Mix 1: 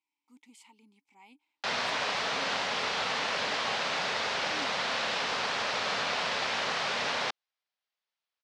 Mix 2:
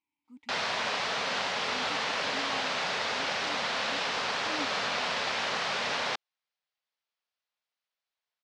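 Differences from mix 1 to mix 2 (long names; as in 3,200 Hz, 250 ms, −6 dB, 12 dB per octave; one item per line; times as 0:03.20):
speech: add bass and treble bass +15 dB, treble −9 dB
background: entry −1.15 s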